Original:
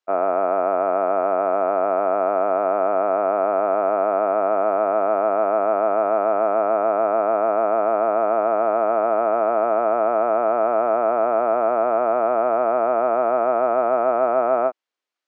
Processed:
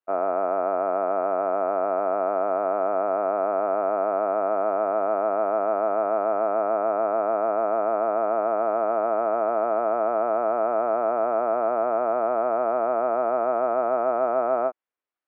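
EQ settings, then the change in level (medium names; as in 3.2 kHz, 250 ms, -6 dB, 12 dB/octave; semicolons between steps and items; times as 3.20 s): low-pass 2.2 kHz 12 dB/octave; -4.0 dB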